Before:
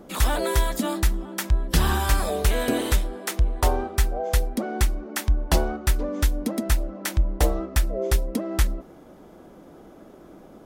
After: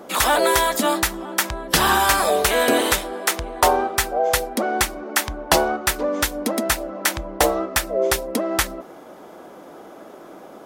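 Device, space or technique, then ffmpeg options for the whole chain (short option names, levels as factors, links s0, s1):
filter by subtraction: -filter_complex "[0:a]asplit=2[s0][s1];[s1]lowpass=810,volume=-1[s2];[s0][s2]amix=inputs=2:normalize=0,volume=2.66"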